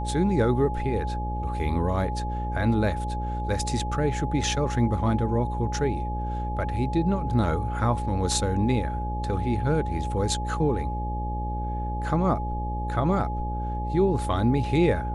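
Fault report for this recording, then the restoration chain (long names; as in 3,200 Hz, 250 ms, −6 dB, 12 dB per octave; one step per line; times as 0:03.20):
mains buzz 60 Hz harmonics 10 −30 dBFS
whistle 840 Hz −32 dBFS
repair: notch filter 840 Hz, Q 30
hum removal 60 Hz, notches 10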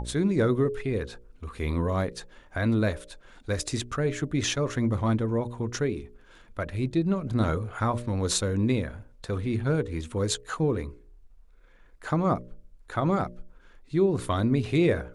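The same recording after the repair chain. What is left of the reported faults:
none of them is left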